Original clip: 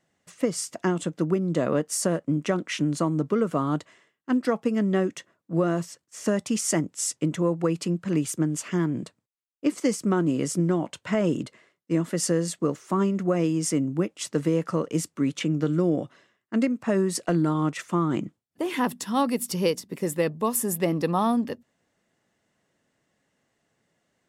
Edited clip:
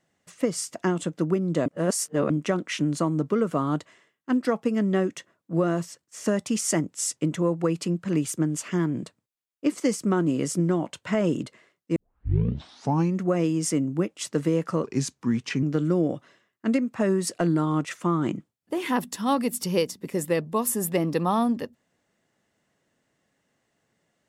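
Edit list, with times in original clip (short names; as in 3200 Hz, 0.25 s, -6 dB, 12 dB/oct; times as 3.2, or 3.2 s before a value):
1.66–2.3 reverse
11.96 tape start 1.25 s
14.84–15.51 speed 85%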